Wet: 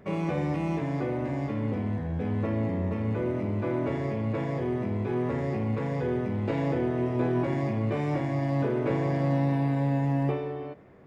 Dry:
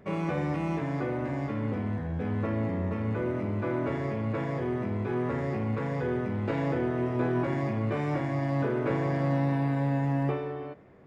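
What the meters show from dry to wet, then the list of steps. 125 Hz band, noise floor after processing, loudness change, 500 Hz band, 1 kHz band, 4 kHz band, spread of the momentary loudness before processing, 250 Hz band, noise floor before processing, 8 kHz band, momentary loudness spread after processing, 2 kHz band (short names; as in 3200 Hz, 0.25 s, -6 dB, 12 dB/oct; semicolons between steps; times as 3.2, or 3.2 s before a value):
+1.5 dB, -35 dBFS, +1.0 dB, +1.0 dB, 0.0 dB, +1.0 dB, 4 LU, +1.5 dB, -36 dBFS, n/a, 4 LU, -1.5 dB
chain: dynamic EQ 1400 Hz, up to -6 dB, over -52 dBFS, Q 1.9; gain +1.5 dB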